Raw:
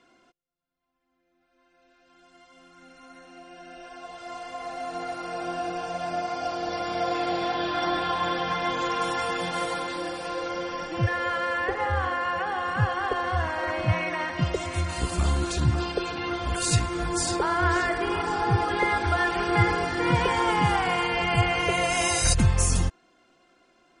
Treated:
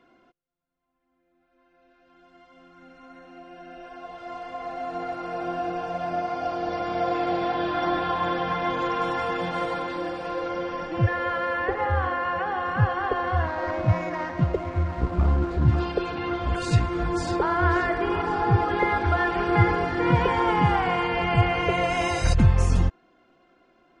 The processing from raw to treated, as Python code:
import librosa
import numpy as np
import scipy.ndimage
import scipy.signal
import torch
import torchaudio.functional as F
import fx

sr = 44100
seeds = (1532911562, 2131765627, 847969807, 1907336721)

y = fx.median_filter(x, sr, points=15, at=(13.46, 15.68))
y = fx.spacing_loss(y, sr, db_at_10k=24)
y = F.gain(torch.from_numpy(y), 3.5).numpy()